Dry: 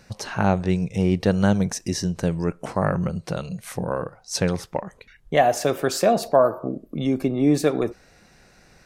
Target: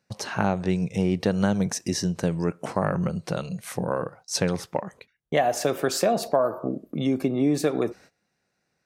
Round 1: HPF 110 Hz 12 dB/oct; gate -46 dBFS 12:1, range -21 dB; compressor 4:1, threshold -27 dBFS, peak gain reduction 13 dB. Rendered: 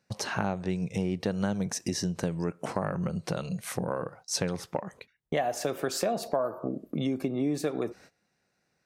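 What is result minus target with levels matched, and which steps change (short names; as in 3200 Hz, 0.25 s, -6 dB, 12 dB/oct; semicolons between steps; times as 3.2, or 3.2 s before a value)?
compressor: peak gain reduction +7 dB
change: compressor 4:1, threshold -18 dBFS, peak gain reduction 6.5 dB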